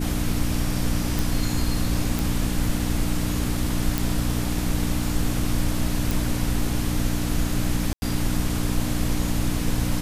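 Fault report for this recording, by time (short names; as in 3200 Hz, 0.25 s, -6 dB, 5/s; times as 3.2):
hum 60 Hz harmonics 5 -27 dBFS
1.19 pop
2.19 pop
3.98 pop
6.11 pop
7.93–8.02 gap 90 ms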